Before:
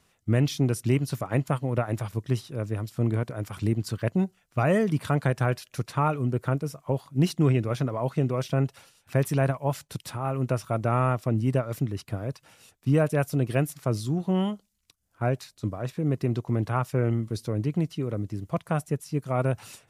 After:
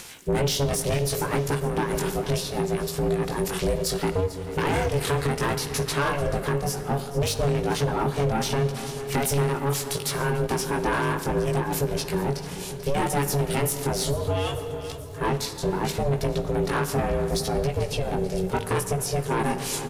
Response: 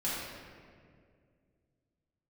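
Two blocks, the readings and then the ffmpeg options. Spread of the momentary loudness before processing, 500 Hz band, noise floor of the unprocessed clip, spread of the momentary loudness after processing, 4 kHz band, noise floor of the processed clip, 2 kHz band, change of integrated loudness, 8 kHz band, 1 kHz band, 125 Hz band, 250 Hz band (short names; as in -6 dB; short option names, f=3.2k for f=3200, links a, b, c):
8 LU, +4.0 dB, -69 dBFS, 4 LU, +11.0 dB, -35 dBFS, +6.0 dB, +1.5 dB, +12.5 dB, +4.5 dB, -2.0 dB, -1.5 dB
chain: -filter_complex "[0:a]flanger=delay=15.5:depth=6.5:speed=0.68,highshelf=f=2.1k:g=10.5,acontrast=77,asoftclip=type=tanh:threshold=-19dB,bandreject=f=60:t=h:w=6,bandreject=f=120:t=h:w=6,bandreject=f=180:t=h:w=6,aecho=1:1:439|878|1317|1756:0.141|0.0692|0.0339|0.0166,acompressor=mode=upward:threshold=-37dB:ratio=2.5,aeval=exprs='val(0)*sin(2*PI*280*n/s)':c=same,asplit=2[a][b];[1:a]atrim=start_sample=2205,asetrate=37044,aresample=44100,adelay=8[c];[b][c]afir=irnorm=-1:irlink=0,volume=-17.5dB[d];[a][d]amix=inputs=2:normalize=0,alimiter=limit=-22.5dB:level=0:latency=1:release=262,volume=7dB"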